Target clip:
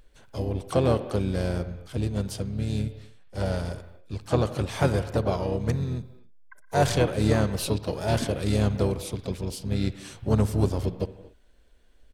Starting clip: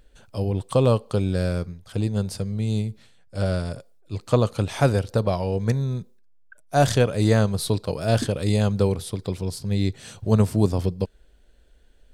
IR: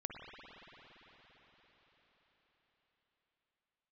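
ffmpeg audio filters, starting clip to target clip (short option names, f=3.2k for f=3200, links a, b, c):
-filter_complex "[0:a]aeval=exprs='0.501*(cos(1*acos(clip(val(0)/0.501,-1,1)))-cos(1*PI/2))+0.0178*(cos(5*acos(clip(val(0)/0.501,-1,1)))-cos(5*PI/2))':c=same,asplit=2[a][b];[1:a]atrim=start_sample=2205,afade=t=out:st=0.33:d=0.01,atrim=end_sample=14994,lowshelf=f=200:g=-8.5[c];[b][c]afir=irnorm=-1:irlink=0,volume=-2.5dB[d];[a][d]amix=inputs=2:normalize=0,asplit=4[e][f][g][h];[f]asetrate=29433,aresample=44100,atempo=1.49831,volume=-7dB[i];[g]asetrate=55563,aresample=44100,atempo=0.793701,volume=-13dB[j];[h]asetrate=58866,aresample=44100,atempo=0.749154,volume=-15dB[k];[e][i][j][k]amix=inputs=4:normalize=0,volume=-7.5dB"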